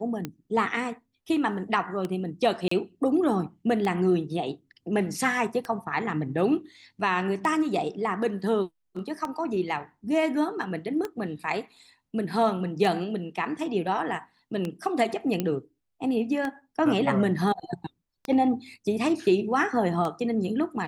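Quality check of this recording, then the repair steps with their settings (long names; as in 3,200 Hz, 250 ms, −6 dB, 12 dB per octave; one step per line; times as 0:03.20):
scratch tick 33 1/3 rpm −17 dBFS
0:02.68–0:02.71: drop-out 34 ms
0:15.40: click −13 dBFS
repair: click removal
repair the gap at 0:02.68, 34 ms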